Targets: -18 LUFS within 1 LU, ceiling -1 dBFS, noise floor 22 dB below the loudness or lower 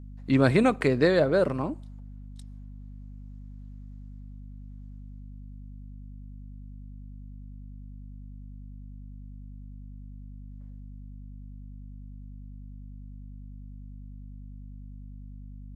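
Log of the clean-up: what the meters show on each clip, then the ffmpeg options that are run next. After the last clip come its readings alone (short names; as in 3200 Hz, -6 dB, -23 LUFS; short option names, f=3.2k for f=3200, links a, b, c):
hum 50 Hz; harmonics up to 250 Hz; hum level -40 dBFS; loudness -24.0 LUFS; peak -7.5 dBFS; loudness target -18.0 LUFS
-> -af "bandreject=f=50:t=h:w=6,bandreject=f=100:t=h:w=6,bandreject=f=150:t=h:w=6,bandreject=f=200:t=h:w=6,bandreject=f=250:t=h:w=6"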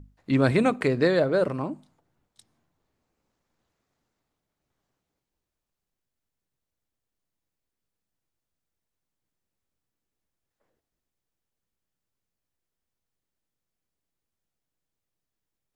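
hum none; loudness -24.0 LUFS; peak -7.5 dBFS; loudness target -18.0 LUFS
-> -af "volume=6dB"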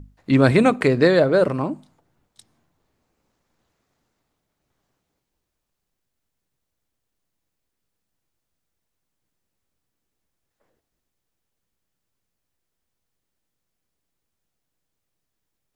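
loudness -18.0 LUFS; peak -1.5 dBFS; noise floor -80 dBFS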